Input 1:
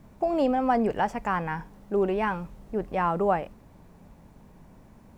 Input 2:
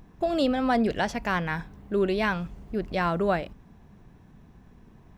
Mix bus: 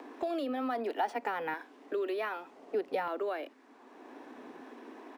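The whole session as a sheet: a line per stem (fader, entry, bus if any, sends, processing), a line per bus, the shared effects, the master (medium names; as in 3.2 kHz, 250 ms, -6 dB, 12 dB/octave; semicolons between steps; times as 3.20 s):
-4.5 dB, 0.00 s, no send, compression, threshold -32 dBFS, peak gain reduction 12.5 dB; LFO high-pass saw down 0.65 Hz 310–3600 Hz; treble shelf 4.3 kHz +9.5 dB
-6.0 dB, 1 ms, no send, steep high-pass 250 Hz 96 dB/octave; peak limiter -20 dBFS, peak gain reduction 6.5 dB; three bands compressed up and down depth 70%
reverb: none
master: treble shelf 5.3 kHz -9 dB; decimation joined by straight lines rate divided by 3×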